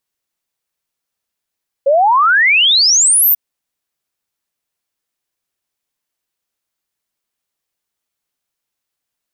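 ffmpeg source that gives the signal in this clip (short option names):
-f lavfi -i "aevalsrc='0.422*clip(min(t,1.49-t)/0.01,0,1)*sin(2*PI*530*1.49/log(15000/530)*(exp(log(15000/530)*t/1.49)-1))':d=1.49:s=44100"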